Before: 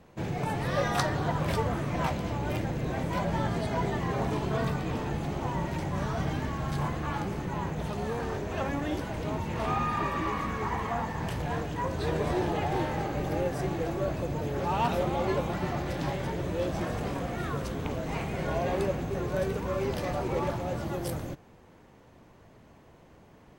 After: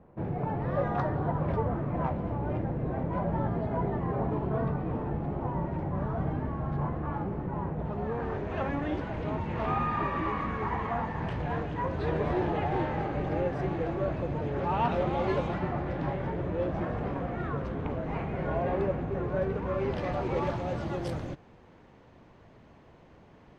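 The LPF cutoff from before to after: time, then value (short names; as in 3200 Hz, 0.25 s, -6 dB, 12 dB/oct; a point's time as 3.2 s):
7.81 s 1100 Hz
8.54 s 2500 Hz
14.87 s 2500 Hz
15.44 s 4300 Hz
15.69 s 1800 Hz
19.48 s 1800 Hz
20.47 s 4500 Hz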